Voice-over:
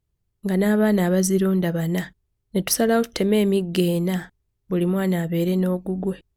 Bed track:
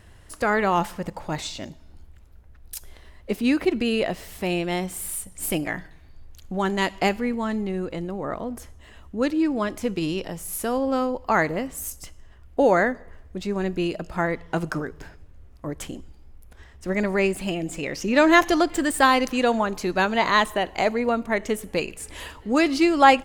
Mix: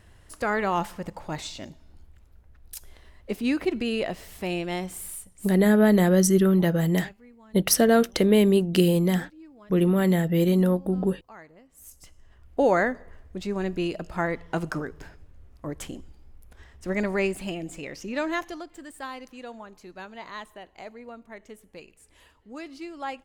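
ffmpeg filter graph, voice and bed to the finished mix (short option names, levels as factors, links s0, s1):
-filter_complex "[0:a]adelay=5000,volume=1.06[s0];[1:a]volume=9.44,afade=t=out:st=4.94:d=0.66:silence=0.0794328,afade=t=in:st=11.7:d=0.87:silence=0.0668344,afade=t=out:st=17.01:d=1.63:silence=0.141254[s1];[s0][s1]amix=inputs=2:normalize=0"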